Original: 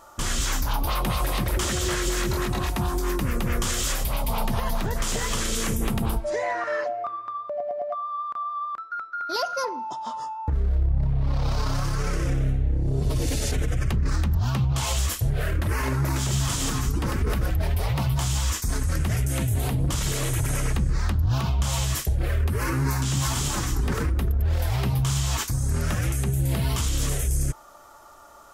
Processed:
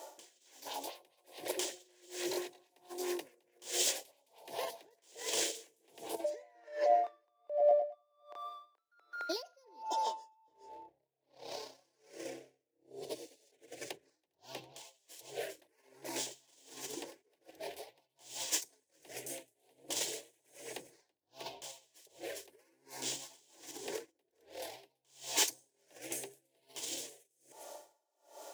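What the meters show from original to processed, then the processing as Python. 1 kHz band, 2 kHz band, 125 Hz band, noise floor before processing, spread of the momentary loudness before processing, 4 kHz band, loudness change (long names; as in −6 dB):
−11.5 dB, −16.0 dB, below −40 dB, −39 dBFS, 5 LU, −10.0 dB, −12.5 dB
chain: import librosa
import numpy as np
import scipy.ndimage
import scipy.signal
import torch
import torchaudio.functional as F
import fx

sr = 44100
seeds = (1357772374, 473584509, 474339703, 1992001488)

p1 = scipy.ndimage.median_filter(x, 3, mode='constant')
p2 = fx.over_compress(p1, sr, threshold_db=-29.0, ratio=-1.0)
p3 = scipy.signal.sosfilt(scipy.signal.butter(4, 270.0, 'highpass', fs=sr, output='sos'), p2)
p4 = fx.fixed_phaser(p3, sr, hz=520.0, stages=4)
p5 = p4 + fx.echo_single(p4, sr, ms=404, db=-18.0, dry=0)
p6 = p5 * 10.0 ** (-36 * (0.5 - 0.5 * np.cos(2.0 * np.pi * 1.3 * np.arange(len(p5)) / sr)) / 20.0)
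y = p6 * 10.0 ** (1.5 / 20.0)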